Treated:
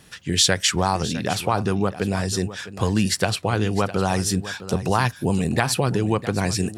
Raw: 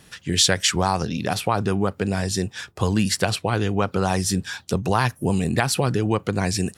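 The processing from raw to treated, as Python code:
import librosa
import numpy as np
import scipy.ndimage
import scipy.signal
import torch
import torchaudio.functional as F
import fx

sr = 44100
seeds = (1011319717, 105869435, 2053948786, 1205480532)

y = x + 10.0 ** (-14.5 / 20.0) * np.pad(x, (int(657 * sr / 1000.0), 0))[:len(x)]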